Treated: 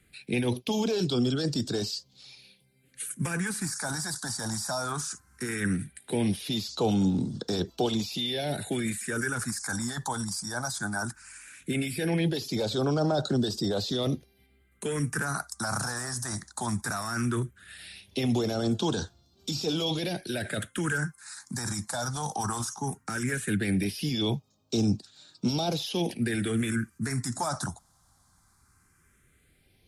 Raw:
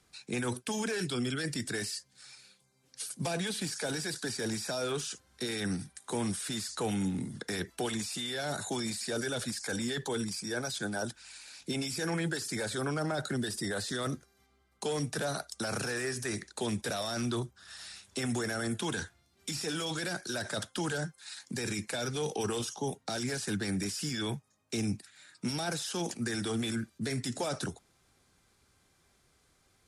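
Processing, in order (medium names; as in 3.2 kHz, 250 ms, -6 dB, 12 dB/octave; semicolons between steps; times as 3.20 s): dynamic bell 760 Hz, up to +4 dB, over -44 dBFS, Q 0.88; phase shifter stages 4, 0.17 Hz, lowest notch 410–2000 Hz; trim +6 dB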